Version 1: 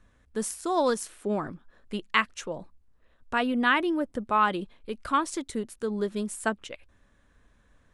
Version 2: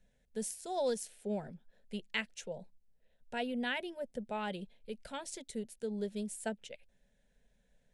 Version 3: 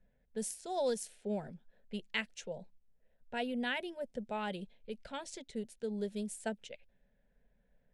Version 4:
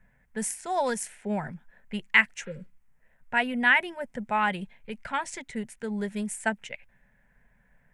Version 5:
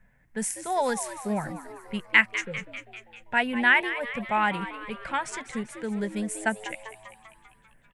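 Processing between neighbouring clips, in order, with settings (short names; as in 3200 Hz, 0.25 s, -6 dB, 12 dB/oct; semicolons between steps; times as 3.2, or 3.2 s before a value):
fixed phaser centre 310 Hz, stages 6; gain -6.5 dB
low-pass opened by the level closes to 1800 Hz, open at -36 dBFS
spectral repair 2.49–2.7, 580–4300 Hz both; graphic EQ 125/500/1000/2000/4000/8000 Hz +6/-7/+10/+12/-8/+4 dB; gain +6.5 dB
frequency-shifting echo 0.197 s, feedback 59%, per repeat +110 Hz, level -12.5 dB; gain +1 dB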